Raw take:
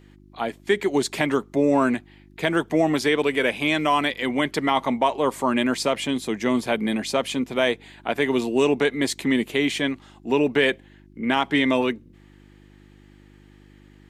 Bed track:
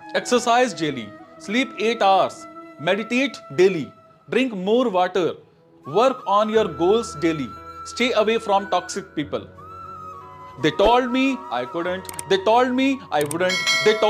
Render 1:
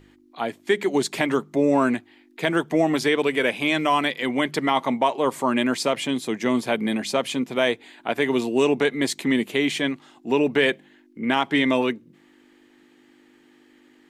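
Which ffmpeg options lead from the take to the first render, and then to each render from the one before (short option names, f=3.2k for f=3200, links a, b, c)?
-af "bandreject=f=50:t=h:w=4,bandreject=f=100:t=h:w=4,bandreject=f=150:t=h:w=4,bandreject=f=200:t=h:w=4"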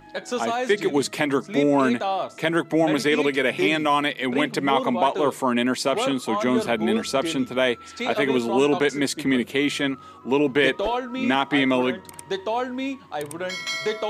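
-filter_complex "[1:a]volume=-9dB[a];[0:a][a]amix=inputs=2:normalize=0"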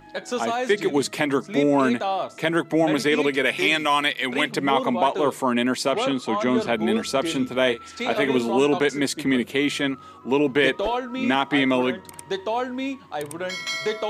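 -filter_complex "[0:a]asettb=1/sr,asplit=3[a][b][c];[a]atrim=end=3.454[d];[b]atrim=start=3.45:end=4.5,asetpts=PTS-STARTPTS,afade=t=in:d=0.004:c=qsin,afade=t=out:st=1.046:d=0.004:c=qsin,tiltshelf=f=970:g=-5[e];[c]atrim=start=4.496[f];[d][e]acrossfade=d=0.004:c1=hsin:c2=qsin[g];[g][f]acrossfade=d=0.004:c1=qsin:c2=hsin,asettb=1/sr,asplit=3[h][i][j];[h]atrim=end=5.934[k];[i]atrim=start=5.93:end=6.73,asetpts=PTS-STARTPTS,afade=t=in:d=0.004:c=qsin,afade=t=out:st=0.796:d=0.004:c=qsin,lowpass=6.9k[l];[j]atrim=start=6.726[m];[k][l]acrossfade=d=0.004:c1=hsin:c2=qsin[n];[n][m]acrossfade=d=0.004:c1=qsin:c2=hsin,asettb=1/sr,asplit=3[o][p][q];[o]atrim=end=7.244[r];[p]atrim=start=7.24:end=8.56,asetpts=PTS-STARTPTS,afade=t=in:d=0.004:c=qsin,afade=t=out:st=1.316:d=0.004:c=qsin,asplit=2[s][t];[t]adelay=39,volume=-12dB[u];[s][u]amix=inputs=2:normalize=0,atrim=end_sample=58212[v];[q]atrim=start=8.556[w];[r][v]acrossfade=d=0.004:c1=hsin:c2=qsin[x];[x][w]acrossfade=d=0.004:c1=qsin:c2=hsin"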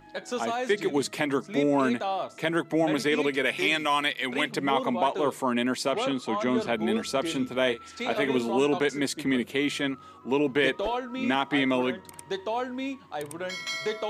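-af "volume=-4.5dB"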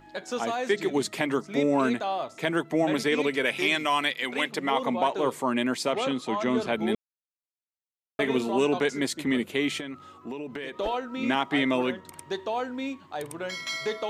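-filter_complex "[0:a]asettb=1/sr,asplit=3[a][b][c];[a]atrim=end=4.244[d];[b]atrim=start=4.24:end=4.82,asetpts=PTS-STARTPTS,afade=t=in:d=0.004:c=qsin,afade=t=out:st=0.576:d=0.004:c=qsin,highpass=f=260:p=1[e];[c]atrim=start=4.816[f];[d][e]acrossfade=d=0.004:c1=hsin:c2=qsin[g];[g][f]acrossfade=d=0.004:c1=qsin:c2=hsin,asettb=1/sr,asplit=3[h][i][j];[h]atrim=end=9.804[k];[i]atrim=start=9.8:end=10.78,asetpts=PTS-STARTPTS,afade=t=in:d=0.004:c=qsin,afade=t=out:st=0.976:d=0.004:c=qsin,acompressor=threshold=-32dB:ratio=8:attack=3.2:release=140:knee=1:detection=peak[l];[j]atrim=start=10.776[m];[k][l]acrossfade=d=0.004:c1=hsin:c2=qsin[n];[n][m]acrossfade=d=0.004:c1=qsin:c2=hsin,asplit=3[o][p][q];[o]atrim=end=6.95,asetpts=PTS-STARTPTS,afade=t=out:st=6.946:d=0.004:c=hsin[r];[p]atrim=start=6.95:end=8.19,asetpts=PTS-STARTPTS,volume=0[s];[q]atrim=start=8.19,asetpts=PTS-STARTPTS,afade=t=in:d=0.004:c=hsin[t];[r][s][t]concat=n=3:v=0:a=1"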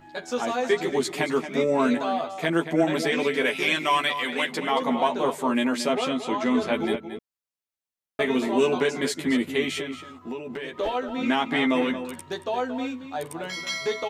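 -filter_complex "[0:a]asplit=2[a][b];[b]adelay=12,volume=-3.5dB[c];[a][c]amix=inputs=2:normalize=0,asplit=2[d][e];[e]adelay=227.4,volume=-10dB,highshelf=f=4k:g=-5.12[f];[d][f]amix=inputs=2:normalize=0"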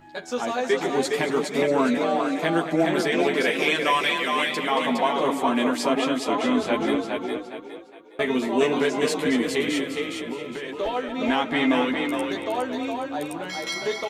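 -filter_complex "[0:a]asplit=5[a][b][c][d][e];[b]adelay=412,afreqshift=31,volume=-4dB[f];[c]adelay=824,afreqshift=62,volume=-13.9dB[g];[d]adelay=1236,afreqshift=93,volume=-23.8dB[h];[e]adelay=1648,afreqshift=124,volume=-33.7dB[i];[a][f][g][h][i]amix=inputs=5:normalize=0"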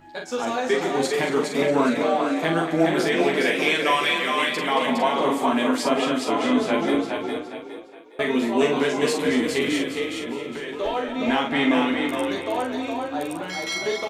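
-filter_complex "[0:a]asplit=2[a][b];[b]adelay=43,volume=-5dB[c];[a][c]amix=inputs=2:normalize=0,aecho=1:1:176:0.0944"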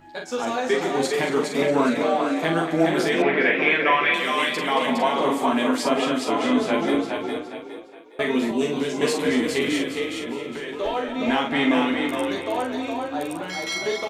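-filter_complex "[0:a]asettb=1/sr,asplit=3[a][b][c];[a]atrim=end=3.224[d];[b]atrim=start=3.22:end=4.14,asetpts=PTS-STARTPTS,afade=t=in:d=0.004:c=qsin,afade=t=out:st=0.916:d=0.004:c=qsin,lowpass=f=2.1k:t=q:w=1.6[e];[c]atrim=start=4.136[f];[d][e]acrossfade=d=0.004:c1=hsin:c2=qsin[g];[g][f]acrossfade=d=0.004:c1=qsin:c2=hsin,asettb=1/sr,asplit=3[h][i][j];[h]atrim=end=8.514[k];[i]atrim=start=8.51:end=9.01,asetpts=PTS-STARTPTS,afade=t=in:d=0.004:c=qsin,afade=t=out:st=0.496:d=0.004:c=qsin,acrossover=split=410|3000[l][m][n];[m]acompressor=threshold=-41dB:ratio=2:attack=3.2:release=140:knee=2.83:detection=peak[o];[l][o][n]amix=inputs=3:normalize=0[p];[j]atrim=start=9.006[q];[k][p]acrossfade=d=0.004:c1=hsin:c2=qsin[r];[r][q]acrossfade=d=0.004:c1=qsin:c2=hsin"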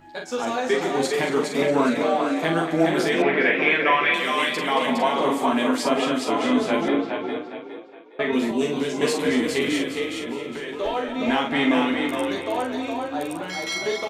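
-filter_complex "[0:a]asettb=1/sr,asplit=3[a][b][c];[a]atrim=end=6.884[d];[b]atrim=start=6.88:end=8.33,asetpts=PTS-STARTPTS,afade=t=in:d=0.004:c=qsin,afade=t=out:st=1.446:d=0.004:c=qsin,highpass=120,lowpass=3.5k[e];[c]atrim=start=8.326[f];[d][e]acrossfade=d=0.004:c1=hsin:c2=qsin[g];[g][f]acrossfade=d=0.004:c1=qsin:c2=hsin"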